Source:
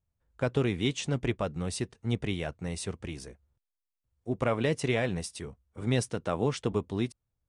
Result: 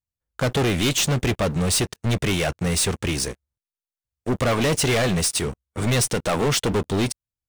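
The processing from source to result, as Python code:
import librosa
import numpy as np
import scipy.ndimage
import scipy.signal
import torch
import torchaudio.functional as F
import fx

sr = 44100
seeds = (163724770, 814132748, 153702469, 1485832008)

p1 = fx.high_shelf(x, sr, hz=2500.0, db=9.0)
p2 = fx.clip_asym(p1, sr, top_db=-31.5, bottom_db=-14.0)
p3 = p1 + (p2 * 10.0 ** (-4.5 / 20.0))
p4 = fx.leveller(p3, sr, passes=5)
y = p4 * 10.0 ** (-6.5 / 20.0)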